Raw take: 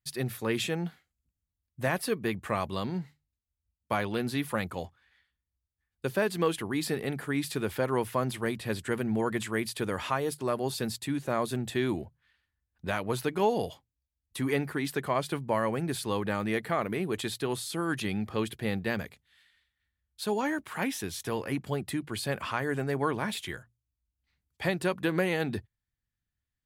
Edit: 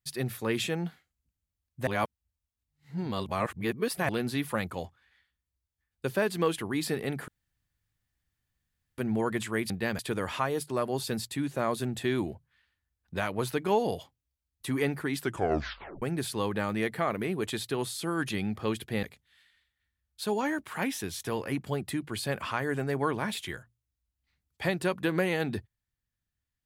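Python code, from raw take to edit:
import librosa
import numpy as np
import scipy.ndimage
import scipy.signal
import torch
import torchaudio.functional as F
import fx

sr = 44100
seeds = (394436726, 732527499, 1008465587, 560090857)

y = fx.edit(x, sr, fx.reverse_span(start_s=1.87, length_s=2.22),
    fx.room_tone_fill(start_s=7.28, length_s=1.7),
    fx.tape_stop(start_s=14.91, length_s=0.82),
    fx.move(start_s=18.74, length_s=0.29, to_s=9.7), tone=tone)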